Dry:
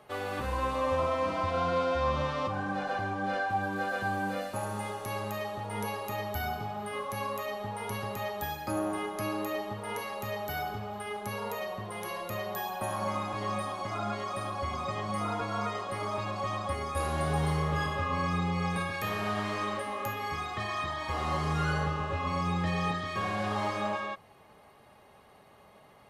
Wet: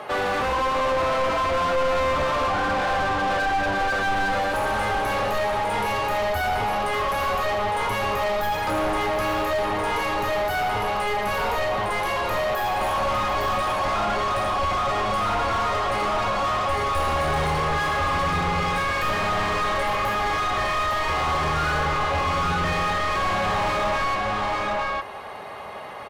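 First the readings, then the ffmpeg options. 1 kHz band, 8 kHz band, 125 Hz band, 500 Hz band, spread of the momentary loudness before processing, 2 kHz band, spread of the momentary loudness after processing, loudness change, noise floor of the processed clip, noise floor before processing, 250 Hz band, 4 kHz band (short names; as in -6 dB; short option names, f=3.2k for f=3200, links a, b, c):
+10.5 dB, +8.0 dB, +3.0 dB, +9.0 dB, 7 LU, +11.5 dB, 2 LU, +9.5 dB, -26 dBFS, -57 dBFS, +3.5 dB, +11.0 dB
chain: -filter_complex "[0:a]aecho=1:1:323|742|858:0.119|0.133|0.422,asplit=2[a][b];[b]highpass=f=720:p=1,volume=31dB,asoftclip=type=tanh:threshold=-15.5dB[c];[a][c]amix=inputs=2:normalize=0,lowpass=f=1.9k:p=1,volume=-6dB,asubboost=boost=3:cutoff=96"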